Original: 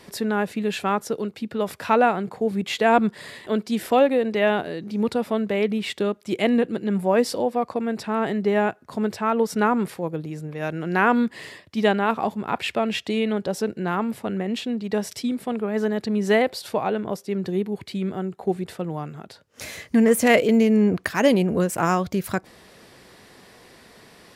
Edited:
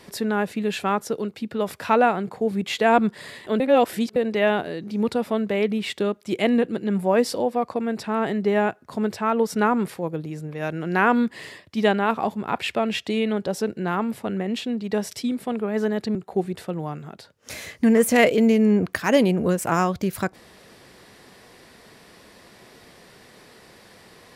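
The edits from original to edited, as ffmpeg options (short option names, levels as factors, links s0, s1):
-filter_complex "[0:a]asplit=4[s0][s1][s2][s3];[s0]atrim=end=3.602[s4];[s1]atrim=start=3.598:end=4.162,asetpts=PTS-STARTPTS,areverse[s5];[s2]atrim=start=4.158:end=16.152[s6];[s3]atrim=start=18.258[s7];[s4][s5]acrossfade=d=0.004:c1=hsin:c2=hsin[s8];[s8][s6]acrossfade=d=0.004:c1=hsin:c2=hsin[s9];[s9][s7]acrossfade=d=0.004:c1=hsin:c2=hsin"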